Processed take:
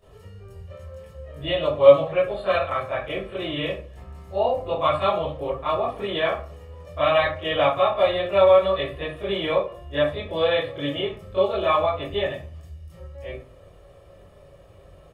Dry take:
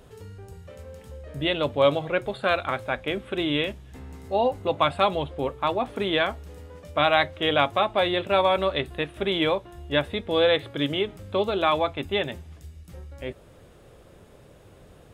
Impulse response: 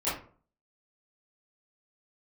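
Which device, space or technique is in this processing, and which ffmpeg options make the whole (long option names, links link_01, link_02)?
microphone above a desk: -filter_complex "[0:a]aecho=1:1:1.7:0.52[link_01];[1:a]atrim=start_sample=2205[link_02];[link_01][link_02]afir=irnorm=-1:irlink=0,volume=-10dB"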